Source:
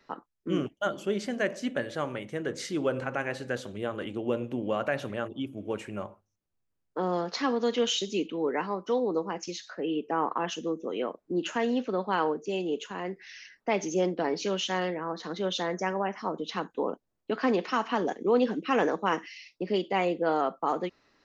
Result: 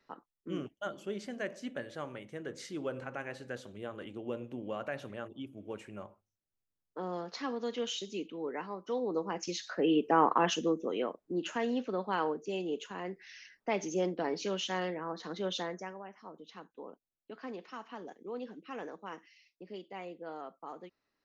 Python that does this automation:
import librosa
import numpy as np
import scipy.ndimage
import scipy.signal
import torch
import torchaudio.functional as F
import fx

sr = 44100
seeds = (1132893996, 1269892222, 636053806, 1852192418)

y = fx.gain(x, sr, db=fx.line((8.79, -9.0), (9.78, 3.0), (10.52, 3.0), (11.26, -5.0), (15.59, -5.0), (16.01, -17.0)))